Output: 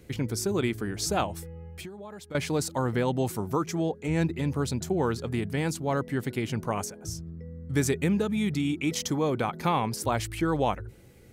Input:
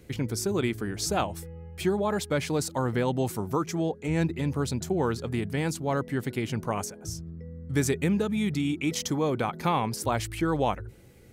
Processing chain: 1.70–2.35 s: compression 12:1, threshold -39 dBFS, peak gain reduction 19 dB

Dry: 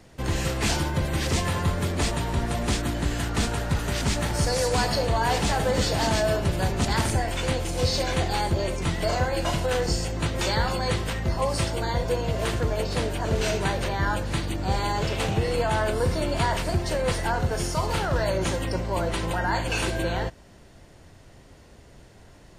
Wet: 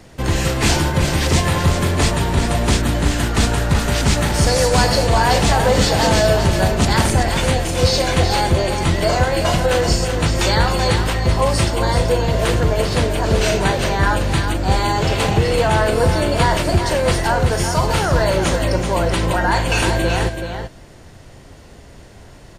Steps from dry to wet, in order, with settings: delay 380 ms -7.5 dB; trim +8 dB

